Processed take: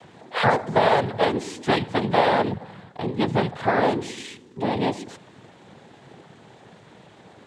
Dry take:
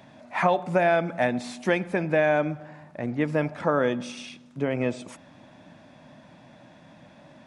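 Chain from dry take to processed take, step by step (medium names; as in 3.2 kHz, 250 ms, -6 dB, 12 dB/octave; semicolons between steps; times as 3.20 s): noise-vocoded speech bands 6; trim +3 dB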